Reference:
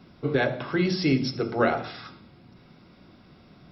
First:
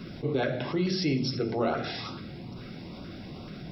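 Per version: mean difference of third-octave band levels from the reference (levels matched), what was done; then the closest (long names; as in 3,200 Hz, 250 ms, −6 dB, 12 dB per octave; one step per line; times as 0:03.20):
7.0 dB: flanger 0.84 Hz, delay 4.7 ms, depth 9.2 ms, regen −62%
auto-filter notch saw up 2.3 Hz 790–2,000 Hz
envelope flattener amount 50%
level −1 dB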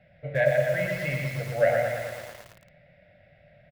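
10.0 dB: drawn EQ curve 150 Hz 0 dB, 270 Hz −19 dB, 390 Hz −20 dB, 590 Hz +14 dB, 1,100 Hz −24 dB, 1,800 Hz +11 dB, 5,500 Hz −20 dB, 8,600 Hz −18 dB
on a send: repeating echo 120 ms, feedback 46%, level −3.5 dB
on the sum: feedback echo at a low word length 112 ms, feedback 80%, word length 6 bits, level −7 dB
level −5 dB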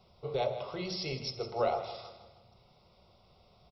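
4.5 dB: parametric band 160 Hz −7.5 dB 1.1 octaves
phaser with its sweep stopped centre 690 Hz, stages 4
repeating echo 158 ms, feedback 46%, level −13 dB
level −3.5 dB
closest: third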